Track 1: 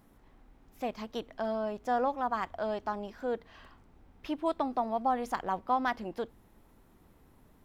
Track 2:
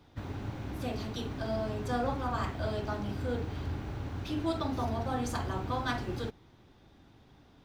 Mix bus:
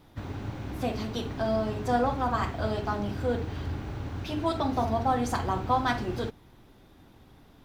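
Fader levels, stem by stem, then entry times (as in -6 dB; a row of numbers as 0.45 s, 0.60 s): +0.5 dB, +2.5 dB; 0.00 s, 0.00 s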